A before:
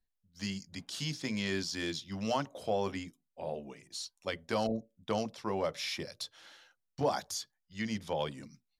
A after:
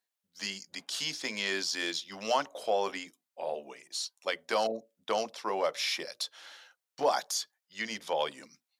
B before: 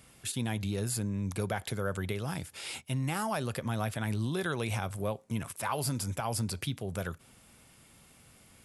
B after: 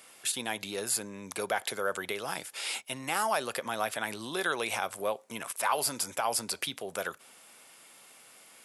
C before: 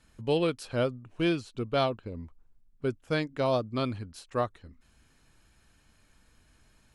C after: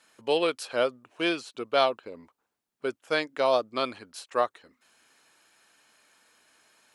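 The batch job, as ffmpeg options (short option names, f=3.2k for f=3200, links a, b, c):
-af "highpass=490,volume=5.5dB"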